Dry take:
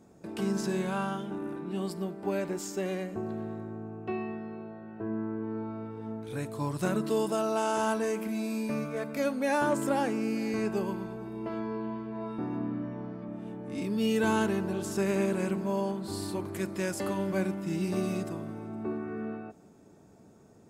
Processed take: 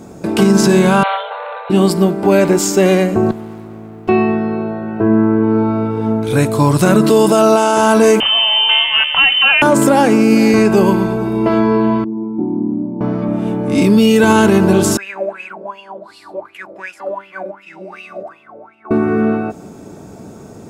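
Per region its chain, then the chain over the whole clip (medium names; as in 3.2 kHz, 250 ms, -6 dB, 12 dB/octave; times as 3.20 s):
1.03–1.70 s: hard clipper -32.5 dBFS + brick-wall FIR band-pass 440–4300 Hz
3.31–4.09 s: pre-emphasis filter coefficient 0.8 + sliding maximum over 17 samples
8.20–9.62 s: tilt EQ +1.5 dB/octave + band-stop 980 Hz, Q 15 + frequency inversion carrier 3.3 kHz
12.04–13.01 s: cascade formant filter u + comb 5.3 ms, depth 66%
14.97–18.91 s: peaking EQ 12 kHz +6 dB 0.44 oct + wah-wah 2.7 Hz 520–2800 Hz, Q 12
whole clip: band-stop 1.8 kHz, Q 18; loudness maximiser +23 dB; trim -1 dB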